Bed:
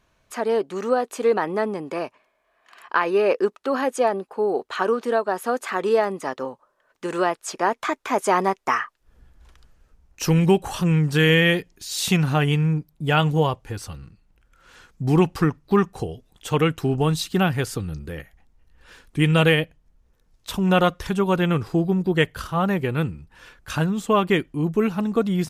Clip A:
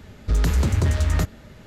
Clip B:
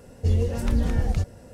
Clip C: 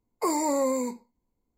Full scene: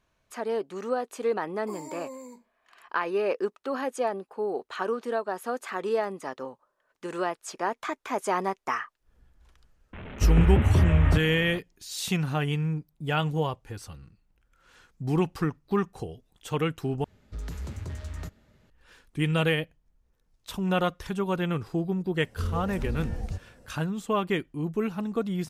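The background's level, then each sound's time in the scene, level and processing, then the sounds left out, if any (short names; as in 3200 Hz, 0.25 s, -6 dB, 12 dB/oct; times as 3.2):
bed -7.5 dB
1.45 add C -15.5 dB
9.93 add A -0.5 dB + delta modulation 16 kbps, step -34 dBFS
17.04 replace with A -16.5 dB
22.14 add B -9.5 dB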